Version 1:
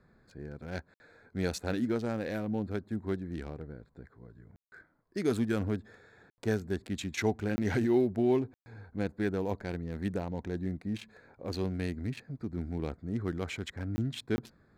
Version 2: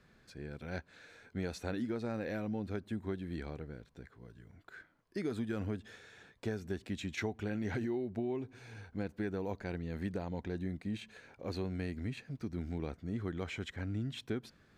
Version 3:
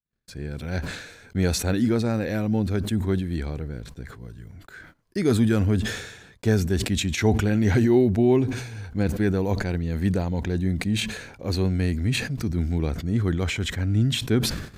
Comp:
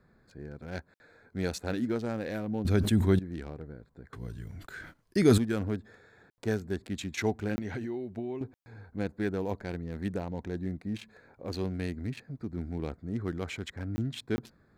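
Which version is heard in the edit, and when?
1
2.65–3.19 from 3
4.13–5.38 from 3
7.59–8.41 from 2

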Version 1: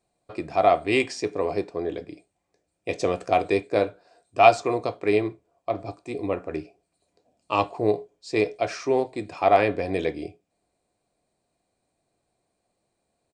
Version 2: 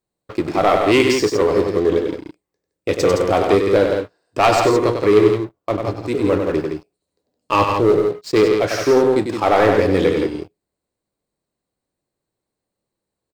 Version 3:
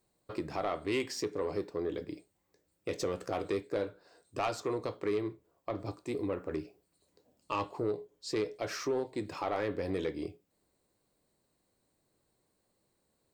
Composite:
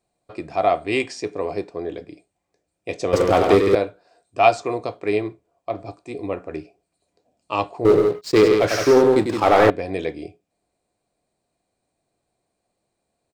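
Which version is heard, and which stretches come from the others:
1
3.13–3.75 from 2
7.85–9.7 from 2
not used: 3

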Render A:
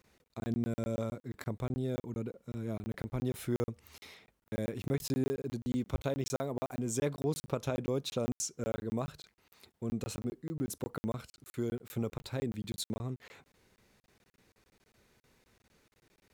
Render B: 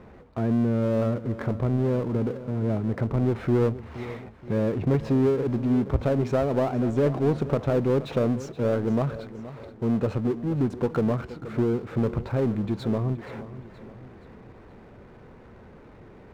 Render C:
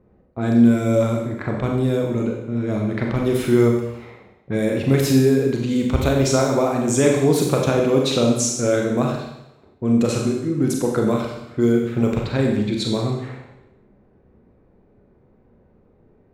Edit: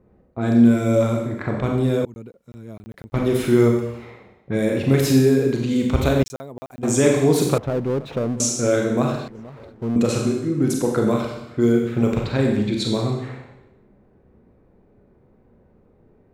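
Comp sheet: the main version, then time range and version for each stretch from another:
C
2.05–3.14 from A
6.23–6.83 from A
7.58–8.4 from B
9.28–9.96 from B

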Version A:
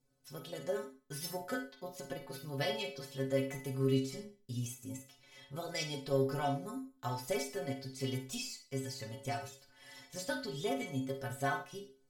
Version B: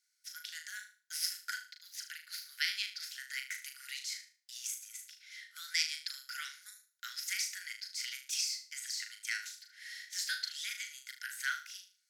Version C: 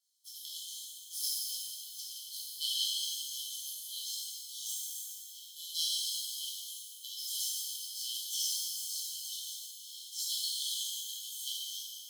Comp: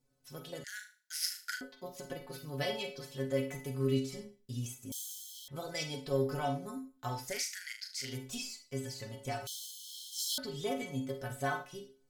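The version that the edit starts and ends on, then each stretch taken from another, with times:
A
0.64–1.61 from B
4.92–5.48 from C
7.32–8.11 from B, crossfade 0.24 s
9.47–10.38 from C

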